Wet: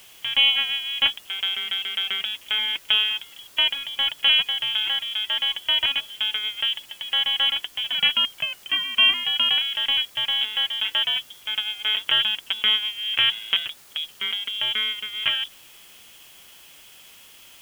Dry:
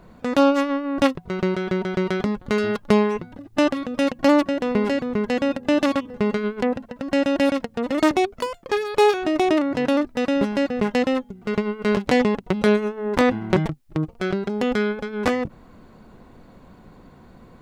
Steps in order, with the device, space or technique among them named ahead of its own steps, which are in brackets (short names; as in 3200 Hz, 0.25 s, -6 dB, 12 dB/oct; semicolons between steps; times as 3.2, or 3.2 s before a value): scrambled radio voice (BPF 350–2600 Hz; inverted band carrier 3600 Hz; white noise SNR 25 dB)